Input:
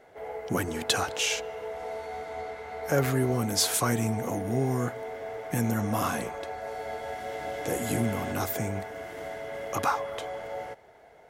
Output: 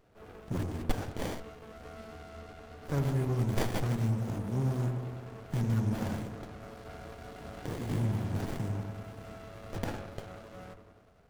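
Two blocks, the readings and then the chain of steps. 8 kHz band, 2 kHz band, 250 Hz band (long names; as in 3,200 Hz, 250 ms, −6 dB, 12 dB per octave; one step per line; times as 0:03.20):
−18.0 dB, −11.5 dB, −4.0 dB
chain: graphic EQ with 10 bands 250 Hz −5 dB, 500 Hz −9 dB, 1,000 Hz −5 dB, 2,000 Hz −8 dB
delay with a low-pass on its return 97 ms, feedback 66%, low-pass 690 Hz, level −4.5 dB
windowed peak hold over 33 samples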